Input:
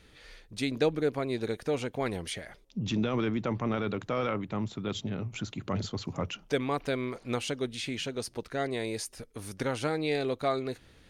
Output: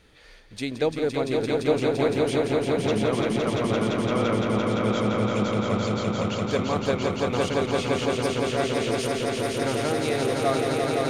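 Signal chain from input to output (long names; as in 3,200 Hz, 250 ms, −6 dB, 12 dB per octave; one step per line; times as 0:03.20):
parametric band 710 Hz +3.5 dB 1.7 octaves
on a send: echo that builds up and dies away 171 ms, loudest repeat 5, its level −4 dB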